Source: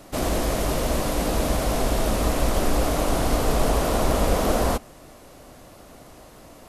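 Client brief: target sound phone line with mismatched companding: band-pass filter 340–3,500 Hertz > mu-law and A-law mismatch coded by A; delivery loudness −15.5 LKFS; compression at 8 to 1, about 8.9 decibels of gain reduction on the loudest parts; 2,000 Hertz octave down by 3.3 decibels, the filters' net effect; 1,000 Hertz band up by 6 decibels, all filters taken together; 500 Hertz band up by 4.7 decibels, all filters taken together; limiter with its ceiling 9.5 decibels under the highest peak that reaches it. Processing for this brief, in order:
parametric band 500 Hz +4.5 dB
parametric band 1,000 Hz +8 dB
parametric band 2,000 Hz −7.5 dB
downward compressor 8 to 1, threshold −23 dBFS
brickwall limiter −23.5 dBFS
band-pass filter 340–3,500 Hz
mu-law and A-law mismatch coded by A
level +21 dB

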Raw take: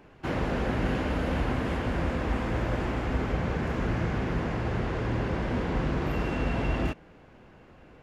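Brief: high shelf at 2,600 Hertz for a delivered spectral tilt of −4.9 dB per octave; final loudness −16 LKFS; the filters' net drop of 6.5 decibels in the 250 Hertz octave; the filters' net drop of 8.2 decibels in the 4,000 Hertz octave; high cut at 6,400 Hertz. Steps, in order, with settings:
low-pass filter 6,400 Hz
parametric band 250 Hz −9 dB
high-shelf EQ 2,600 Hz −6 dB
parametric band 4,000 Hz −6.5 dB
level +16.5 dB

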